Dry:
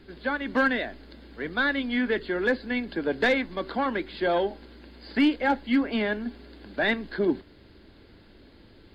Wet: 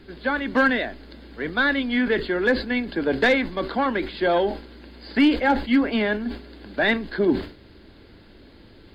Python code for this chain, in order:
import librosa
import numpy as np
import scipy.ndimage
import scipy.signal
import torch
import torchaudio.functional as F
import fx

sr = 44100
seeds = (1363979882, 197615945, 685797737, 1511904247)

y = fx.sustainer(x, sr, db_per_s=130.0)
y = y * librosa.db_to_amplitude(4.0)